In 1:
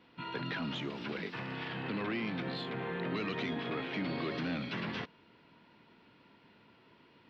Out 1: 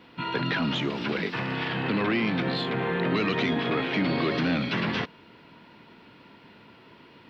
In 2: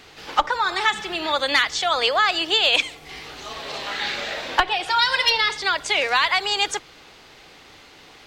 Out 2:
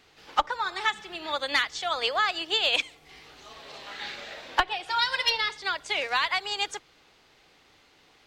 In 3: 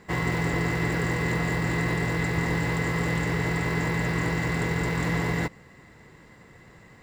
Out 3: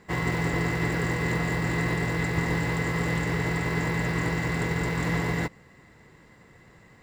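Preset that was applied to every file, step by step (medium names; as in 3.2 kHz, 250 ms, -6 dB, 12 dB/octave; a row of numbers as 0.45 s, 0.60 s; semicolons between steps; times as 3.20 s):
upward expansion 1.5:1, over -30 dBFS; normalise loudness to -27 LUFS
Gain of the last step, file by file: +10.5 dB, -4.5 dB, +0.5 dB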